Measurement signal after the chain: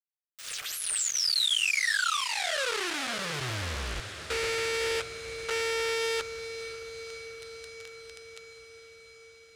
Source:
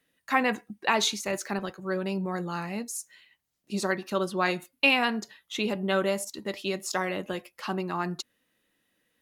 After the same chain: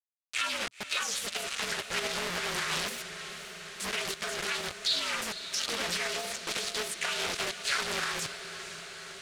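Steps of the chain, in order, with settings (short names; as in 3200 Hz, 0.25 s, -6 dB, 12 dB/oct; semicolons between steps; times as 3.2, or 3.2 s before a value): inharmonic rescaling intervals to 118%; in parallel at +2.5 dB: negative-ratio compressor -40 dBFS, ratio -1; on the sum: dispersion lows, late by 0.113 s, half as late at 2800 Hz; bit-crush 5-bit; limiter -22.5 dBFS; EQ curve 120 Hz 0 dB, 180 Hz -8 dB, 260 Hz -8 dB, 420 Hz +1 dB, 660 Hz +2 dB, 950 Hz -3 dB, 1300 Hz +9 dB, 3500 Hz +12 dB, 9200 Hz +8 dB, 15000 Hz -12 dB; on a send: diffused feedback echo 0.51 s, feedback 73%, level -11.5 dB; on the sum: Doppler distortion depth 0.55 ms; gain -8 dB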